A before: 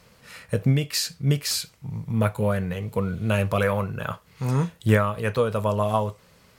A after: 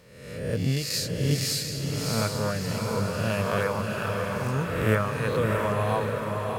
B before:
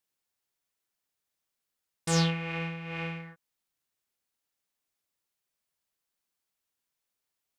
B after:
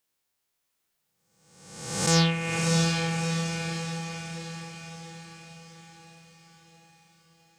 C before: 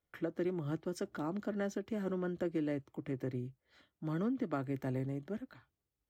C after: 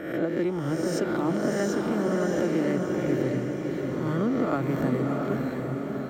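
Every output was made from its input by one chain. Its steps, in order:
reverse spectral sustain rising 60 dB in 0.97 s; echo that smears into a reverb 667 ms, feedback 54%, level -3 dB; normalise loudness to -27 LUFS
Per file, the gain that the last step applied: -6.5 dB, +3.5 dB, +7.5 dB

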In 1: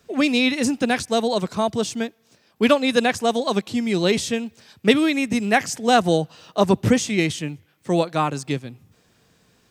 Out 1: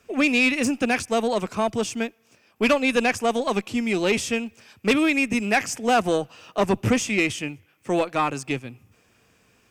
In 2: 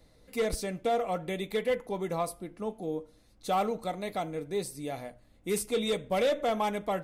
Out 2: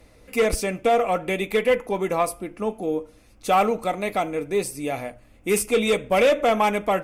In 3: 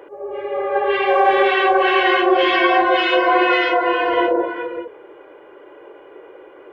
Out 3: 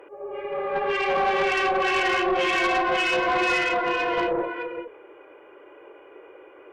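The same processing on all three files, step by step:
graphic EQ with 31 bands 160 Hz -8 dB, 1.25 kHz +3 dB, 2.5 kHz +8 dB, 4 kHz -8 dB; valve stage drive 12 dB, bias 0.3; normalise loudness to -23 LUFS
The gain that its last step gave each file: 0.0 dB, +10.0 dB, -5.0 dB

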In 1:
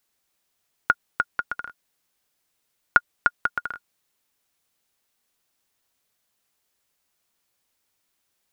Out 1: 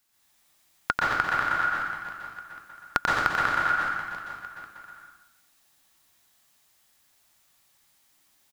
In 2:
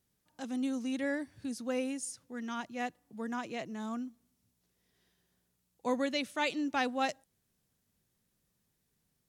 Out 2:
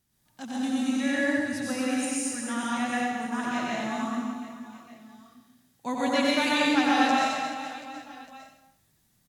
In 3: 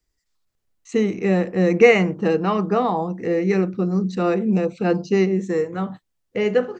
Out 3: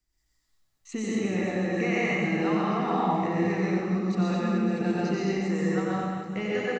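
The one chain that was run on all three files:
peaking EQ 470 Hz -10.5 dB 0.46 oct; compression, threshold -25 dBFS; reverse bouncing-ball echo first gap 90 ms, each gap 1.5×, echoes 5; plate-style reverb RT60 0.81 s, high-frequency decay 0.9×, pre-delay 110 ms, DRR -4.5 dB; normalise loudness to -27 LUFS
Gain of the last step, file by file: +2.0 dB, +3.0 dB, -4.5 dB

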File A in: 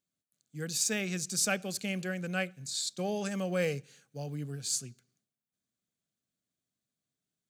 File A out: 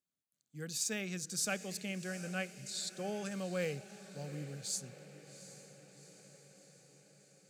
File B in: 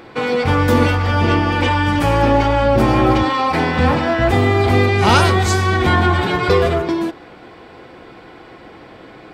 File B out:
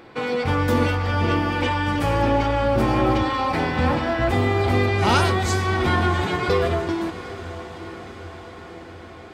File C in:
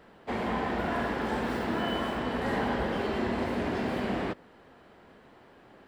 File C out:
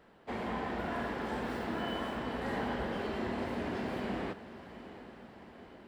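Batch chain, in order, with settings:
echo that smears into a reverb 763 ms, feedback 63%, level -14.5 dB; trim -6 dB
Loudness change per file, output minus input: -6.0 LU, -6.0 LU, -6.0 LU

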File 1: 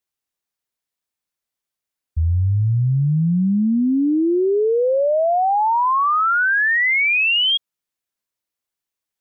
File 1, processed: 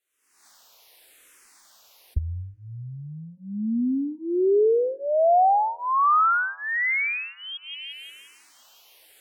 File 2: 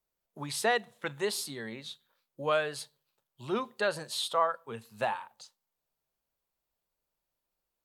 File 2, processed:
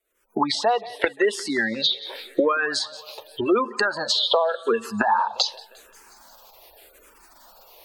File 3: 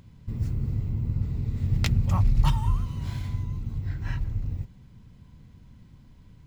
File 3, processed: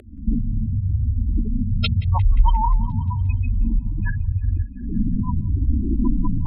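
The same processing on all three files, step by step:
rattle on loud lows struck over -30 dBFS, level -31 dBFS; recorder AGC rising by 65 dB/s; spectral gate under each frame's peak -20 dB strong; tone controls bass -10 dB, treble -1 dB; thinning echo 176 ms, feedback 62%, high-pass 190 Hz, level -22.5 dB; compression 1.5:1, threshold -29 dBFS; low-pass that closes with the level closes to 1.5 kHz, closed at -22 dBFS; peaking EQ 140 Hz -14.5 dB 0.81 oct; barber-pole phaser -0.87 Hz; normalise loudness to -23 LUFS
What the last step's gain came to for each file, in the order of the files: +5.5 dB, +12.5 dB, +20.5 dB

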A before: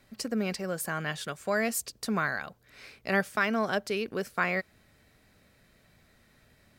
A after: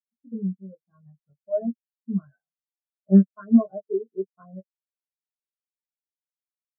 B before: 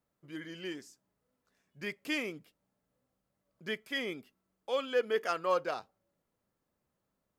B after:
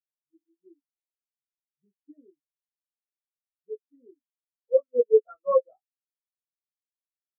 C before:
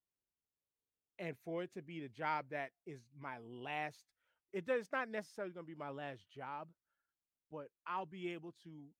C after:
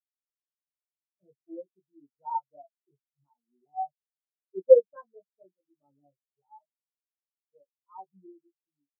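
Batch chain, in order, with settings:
low-pass 1.4 kHz 24 dB/octave; in parallel at -10.5 dB: decimation with a swept rate 34×, swing 160% 0.24 Hz; on the sum: doubling 21 ms -3 dB; spectral contrast expander 4:1; normalise loudness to -24 LUFS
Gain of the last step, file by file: +7.5 dB, +8.0 dB, +19.5 dB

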